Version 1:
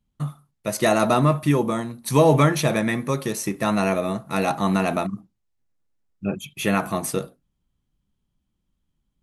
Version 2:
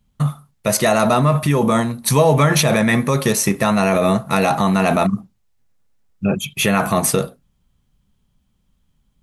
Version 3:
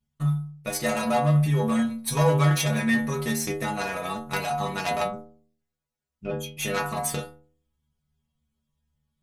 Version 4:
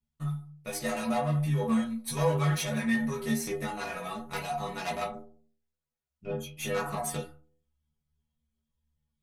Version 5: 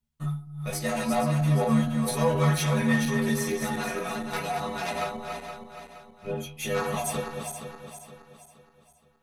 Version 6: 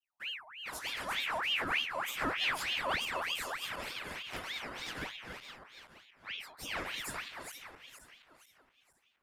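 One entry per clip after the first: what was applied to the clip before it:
peaking EQ 320 Hz -12 dB 0.24 oct; in parallel at 0 dB: compressor with a negative ratio -25 dBFS, ratio -0.5; on the sum: trim +2.5 dB
Chebyshev shaper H 3 -14 dB, 6 -25 dB, 8 -25 dB, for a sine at -1 dBFS; inharmonic resonator 73 Hz, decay 0.71 s, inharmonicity 0.008; trim +8 dB
chorus voices 6, 1.2 Hz, delay 15 ms, depth 3.1 ms; trim -3.5 dB
backward echo that repeats 235 ms, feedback 63%, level -5.5 dB; trim +2.5 dB
ring modulator with a swept carrier 1.9 kHz, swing 60%, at 3.3 Hz; trim -8 dB

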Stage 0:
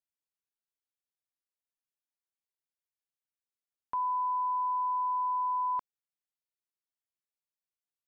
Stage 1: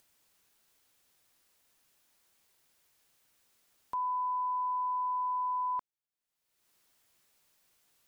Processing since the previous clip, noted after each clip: upward compressor, threshold -48 dBFS; trim -2 dB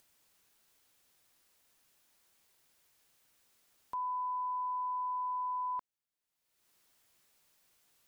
peak limiter -32.5 dBFS, peak gain reduction 3.5 dB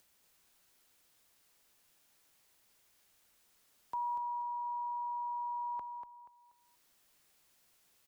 frequency shift -39 Hz; feedback delay 240 ms, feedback 31%, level -7 dB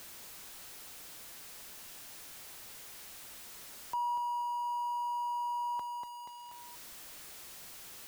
jump at every zero crossing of -45.5 dBFS; trim +1.5 dB

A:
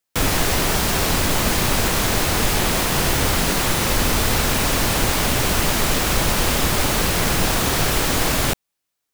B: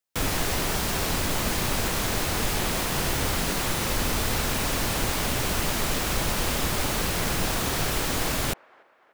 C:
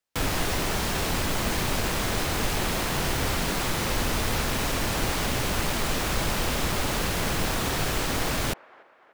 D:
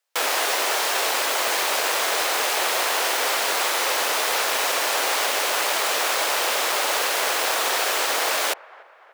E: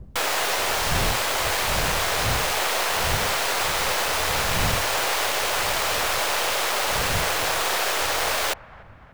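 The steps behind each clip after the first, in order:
feedback echo behind a band-pass 292 ms, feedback 52%, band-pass 970 Hz, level -23 dB; trim -7 dB
treble shelf 7.2 kHz -8.5 dB; in parallel at -6 dB: integer overflow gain 26 dB
high-pass 480 Hz 24 dB/octave; trim +7 dB
tracing distortion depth 0.055 ms; wind noise 110 Hz -33 dBFS; trim -1 dB

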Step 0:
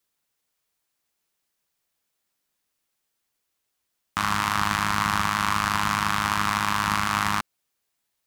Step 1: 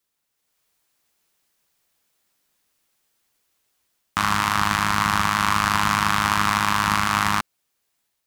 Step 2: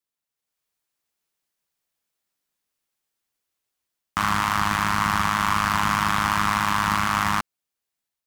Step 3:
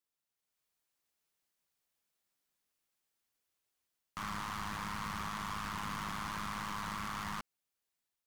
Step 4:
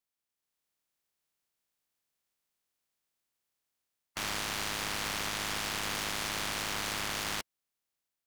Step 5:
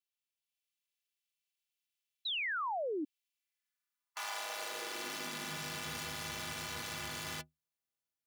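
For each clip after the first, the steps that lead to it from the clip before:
level rider gain up to 7.5 dB
waveshaping leveller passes 2; trim -7 dB
peak limiter -17 dBFS, peak gain reduction 8.5 dB; saturation -31.5 dBFS, distortion -6 dB; trim -3.5 dB
spectral peaks clipped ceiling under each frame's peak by 21 dB; waveshaping leveller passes 1; trim +2 dB
high-pass sweep 2.7 kHz -> 100 Hz, 3.31–5.95 s; inharmonic resonator 73 Hz, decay 0.23 s, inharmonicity 0.03; painted sound fall, 2.25–3.05 s, 280–4100 Hz -36 dBFS

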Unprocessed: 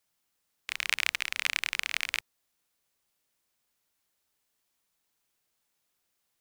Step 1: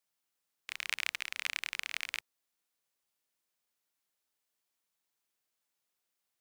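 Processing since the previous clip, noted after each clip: bass shelf 140 Hz -8.5 dB; trim -6.5 dB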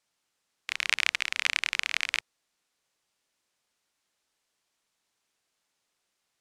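low-pass 8.2 kHz 12 dB/octave; trim +9 dB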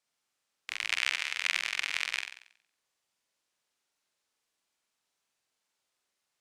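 bass shelf 150 Hz -3.5 dB; on a send: flutter echo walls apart 7.9 m, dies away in 0.6 s; on the sum: trim -5 dB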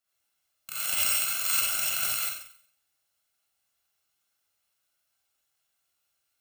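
bit-reversed sample order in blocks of 128 samples; gated-style reverb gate 110 ms rising, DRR -6.5 dB; trim -2.5 dB

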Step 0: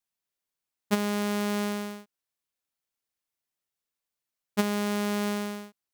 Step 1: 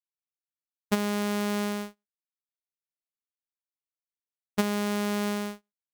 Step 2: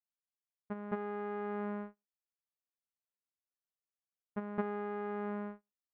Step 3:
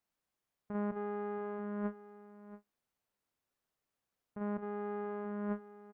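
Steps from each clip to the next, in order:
gate -34 dBFS, range -41 dB
low-pass 1.7 kHz 24 dB/octave; gain riding 0.5 s; reverse echo 216 ms -5.5 dB; trim -7.5 dB
treble shelf 2.2 kHz -10.5 dB; compressor with a negative ratio -46 dBFS, ratio -1; delay 679 ms -15 dB; trim +7.5 dB

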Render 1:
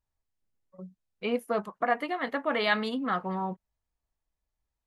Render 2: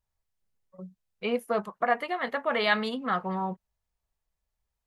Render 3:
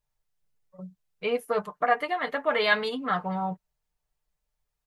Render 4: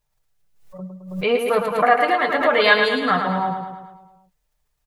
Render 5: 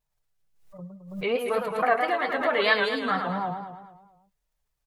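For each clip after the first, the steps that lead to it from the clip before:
peaking EQ 290 Hz -14 dB 0.2 oct; trim +1.5 dB
comb 6.7 ms, depth 67%
on a send: feedback delay 108 ms, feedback 57%, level -6 dB; on the sum: swell ahead of each attack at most 92 dB/s; trim +7 dB
vibrato 4.5 Hz 96 cents; trim -7 dB

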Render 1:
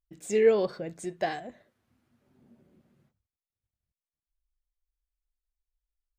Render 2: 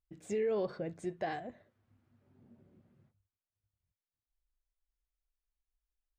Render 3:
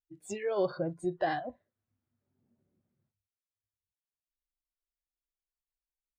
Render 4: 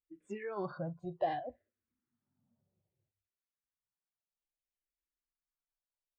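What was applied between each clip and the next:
low-pass 2.3 kHz 6 dB/octave; peaking EQ 100 Hz +9 dB 0.49 oct; peak limiter -24 dBFS, peak gain reduction 12 dB; trim -2.5 dB
spectral noise reduction 20 dB; trim +6.5 dB
low-pass 2.7 kHz 12 dB/octave; barber-pole phaser -0.62 Hz; trim -1.5 dB

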